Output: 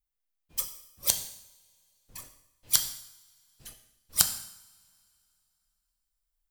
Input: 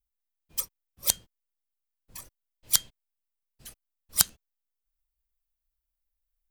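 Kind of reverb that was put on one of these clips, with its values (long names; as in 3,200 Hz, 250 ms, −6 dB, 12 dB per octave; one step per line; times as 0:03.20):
coupled-rooms reverb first 0.76 s, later 3 s, from −24 dB, DRR 6 dB
level −1 dB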